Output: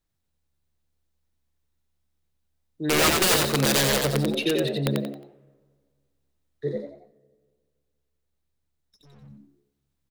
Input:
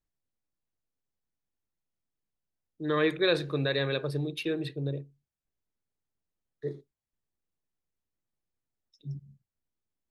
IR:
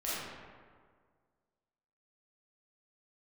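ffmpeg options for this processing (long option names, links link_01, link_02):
-filter_complex "[0:a]equalizer=frequency=3800:width_type=o:width=0.26:gain=4,aeval=exprs='(mod(11.2*val(0)+1,2)-1)/11.2':channel_layout=same,asettb=1/sr,asplit=3[link_01][link_02][link_03];[link_01]atrim=end=6.764[link_04];[link_02]atrim=start=6.76:end=9.2,asetpts=PTS-STARTPTS,afade=type=in:duration=0.004:curve=qsin,afade=type=out:start_time=2.436:duration=0.004:curve=qsin,aeval=exprs='(tanh(891*val(0)+0.55)-tanh(0.55))/891':channel_layout=same[link_05];[link_03]atrim=start=9.196[link_06];[link_04][link_05]acrossfade=duration=0.004:curve1=hsin:curve2=qsin[link_07];[link_07][link_06]acrossfade=duration=0.004:curve1=qsin:curve2=hsin,asplit=5[link_08][link_09][link_10][link_11][link_12];[link_09]adelay=90,afreqshift=71,volume=-3dB[link_13];[link_10]adelay=180,afreqshift=142,volume=-12.4dB[link_14];[link_11]adelay=270,afreqshift=213,volume=-21.7dB[link_15];[link_12]adelay=360,afreqshift=284,volume=-31.1dB[link_16];[link_08][link_13][link_14][link_15][link_16]amix=inputs=5:normalize=0,asplit=2[link_17][link_18];[1:a]atrim=start_sample=2205[link_19];[link_18][link_19]afir=irnorm=-1:irlink=0,volume=-26dB[link_20];[link_17][link_20]amix=inputs=2:normalize=0,volume=5.5dB"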